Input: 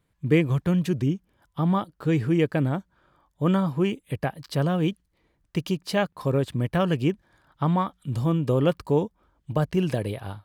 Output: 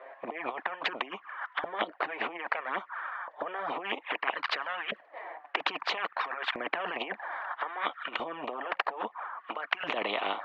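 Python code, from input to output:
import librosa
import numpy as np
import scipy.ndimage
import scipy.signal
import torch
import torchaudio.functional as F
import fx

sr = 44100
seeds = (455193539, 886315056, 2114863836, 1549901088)

y = fx.over_compress(x, sr, threshold_db=-29.0, ratio=-0.5)
y = fx.env_flanger(y, sr, rest_ms=7.8, full_db=-25.5)
y = fx.cabinet(y, sr, low_hz=280.0, low_slope=24, high_hz=2500.0, hz=(720.0, 1100.0, 1800.0), db=(9, 7, 9))
y = fx.filter_lfo_highpass(y, sr, shape='saw_up', hz=0.61, low_hz=560.0, high_hz=1500.0, q=4.9)
y = fx.spectral_comp(y, sr, ratio=4.0)
y = F.gain(torch.from_numpy(y), -4.0).numpy()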